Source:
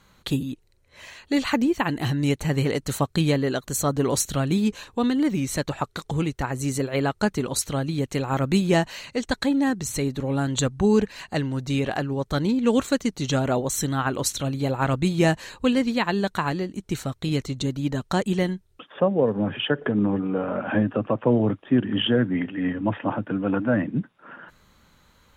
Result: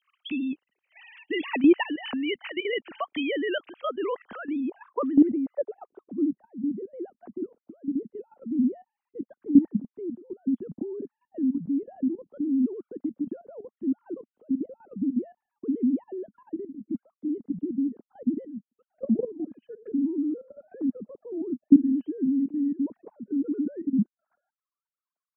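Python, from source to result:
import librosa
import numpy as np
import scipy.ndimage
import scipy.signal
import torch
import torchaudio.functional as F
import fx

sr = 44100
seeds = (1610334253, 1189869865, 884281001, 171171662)

y = fx.sine_speech(x, sr)
y = fx.level_steps(y, sr, step_db=14)
y = fx.filter_sweep_lowpass(y, sr, from_hz=2700.0, to_hz=230.0, start_s=3.86, end_s=6.37, q=3.0)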